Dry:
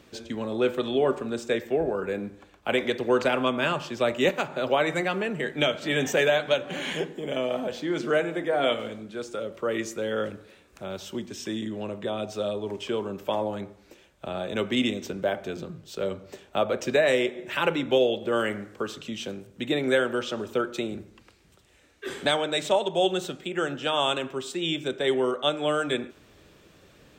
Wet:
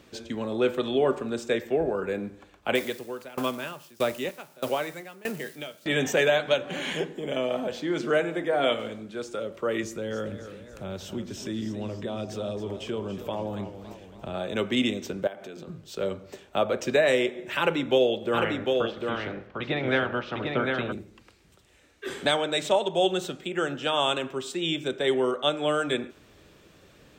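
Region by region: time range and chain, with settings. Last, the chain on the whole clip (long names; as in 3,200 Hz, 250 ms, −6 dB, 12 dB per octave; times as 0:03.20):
0:02.75–0:05.86: spike at every zero crossing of −28 dBFS + tremolo with a ramp in dB decaying 1.6 Hz, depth 23 dB
0:09.83–0:14.34: downward compressor 1.5 to 1, threshold −39 dBFS + low-shelf EQ 190 Hz +11 dB + feedback echo with a swinging delay time 277 ms, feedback 55%, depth 118 cents, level −11 dB
0:15.27–0:15.68: high-pass filter 170 Hz + downward compressor 4 to 1, threshold −38 dBFS
0:18.33–0:20.91: ceiling on every frequency bin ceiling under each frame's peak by 14 dB + high-frequency loss of the air 320 metres + single-tap delay 750 ms −4 dB
whole clip: no processing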